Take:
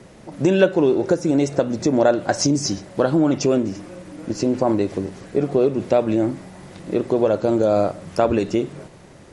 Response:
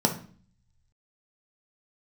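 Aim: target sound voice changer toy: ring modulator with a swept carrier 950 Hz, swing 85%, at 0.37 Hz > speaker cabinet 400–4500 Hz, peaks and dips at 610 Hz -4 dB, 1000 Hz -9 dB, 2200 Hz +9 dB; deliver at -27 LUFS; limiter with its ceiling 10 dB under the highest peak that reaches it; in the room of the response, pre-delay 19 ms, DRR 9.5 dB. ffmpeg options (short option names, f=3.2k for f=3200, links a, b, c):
-filter_complex "[0:a]alimiter=limit=-11.5dB:level=0:latency=1,asplit=2[a][b];[1:a]atrim=start_sample=2205,adelay=19[c];[b][c]afir=irnorm=-1:irlink=0,volume=-21.5dB[d];[a][d]amix=inputs=2:normalize=0,aeval=exprs='val(0)*sin(2*PI*950*n/s+950*0.85/0.37*sin(2*PI*0.37*n/s))':c=same,highpass=400,equalizer=f=610:t=q:w=4:g=-4,equalizer=f=1k:t=q:w=4:g=-9,equalizer=f=2.2k:t=q:w=4:g=9,lowpass=f=4.5k:w=0.5412,lowpass=f=4.5k:w=1.3066,volume=-4.5dB"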